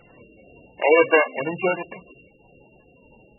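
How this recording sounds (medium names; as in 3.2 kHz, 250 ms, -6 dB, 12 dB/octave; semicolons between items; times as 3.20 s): a buzz of ramps at a fixed pitch in blocks of 16 samples; tremolo triangle 2 Hz, depth 40%; MP3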